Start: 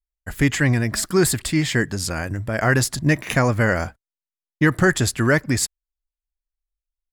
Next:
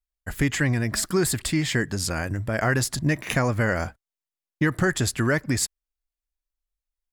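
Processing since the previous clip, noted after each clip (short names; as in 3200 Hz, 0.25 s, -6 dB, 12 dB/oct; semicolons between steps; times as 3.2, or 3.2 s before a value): compressor 2:1, threshold -20 dBFS, peak gain reduction 5 dB; gain -1 dB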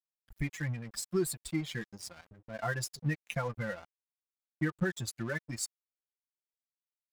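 per-bin expansion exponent 2; comb 5.8 ms, depth 80%; crossover distortion -38.5 dBFS; gain -8.5 dB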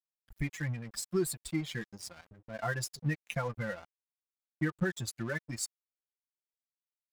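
nothing audible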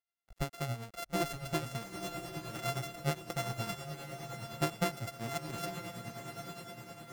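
sample sorter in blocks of 64 samples; diffused feedback echo 0.928 s, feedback 52%, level -6 dB; tremolo 9.7 Hz, depth 52%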